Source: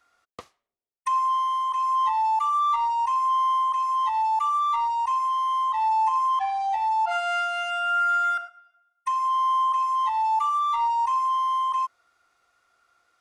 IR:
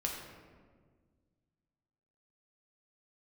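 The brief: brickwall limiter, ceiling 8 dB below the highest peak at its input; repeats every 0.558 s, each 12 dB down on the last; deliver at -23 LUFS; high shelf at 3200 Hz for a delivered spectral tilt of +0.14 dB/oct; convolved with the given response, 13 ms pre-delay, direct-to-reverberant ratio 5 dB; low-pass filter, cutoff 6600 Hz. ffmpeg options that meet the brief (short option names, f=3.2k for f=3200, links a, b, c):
-filter_complex "[0:a]lowpass=6.6k,highshelf=f=3.2k:g=4,alimiter=limit=-22dB:level=0:latency=1,aecho=1:1:558|1116|1674:0.251|0.0628|0.0157,asplit=2[a][b];[1:a]atrim=start_sample=2205,adelay=13[c];[b][c]afir=irnorm=-1:irlink=0,volume=-7.5dB[d];[a][d]amix=inputs=2:normalize=0,volume=3dB"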